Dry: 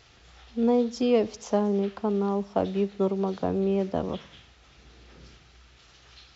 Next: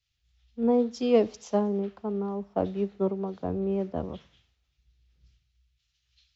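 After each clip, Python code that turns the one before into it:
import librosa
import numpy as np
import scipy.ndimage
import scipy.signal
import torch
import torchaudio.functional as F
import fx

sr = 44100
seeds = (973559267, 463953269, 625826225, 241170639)

y = fx.high_shelf(x, sr, hz=2100.0, db=-9.5)
y = fx.band_widen(y, sr, depth_pct=100)
y = F.gain(torch.from_numpy(y), -3.0).numpy()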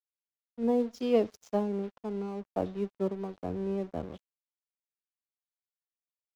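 y = np.sign(x) * np.maximum(np.abs(x) - 10.0 ** (-46.0 / 20.0), 0.0)
y = F.gain(torch.from_numpy(y), -3.5).numpy()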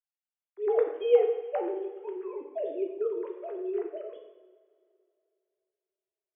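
y = fx.sine_speech(x, sr)
y = fx.rev_double_slope(y, sr, seeds[0], early_s=0.92, late_s=2.8, knee_db=-18, drr_db=2.0)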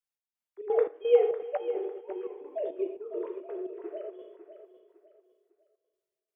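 y = fx.step_gate(x, sr, bpm=172, pattern='xx..xxx.', floor_db=-12.0, edge_ms=4.5)
y = fx.echo_feedback(y, sr, ms=552, feedback_pct=30, wet_db=-11.5)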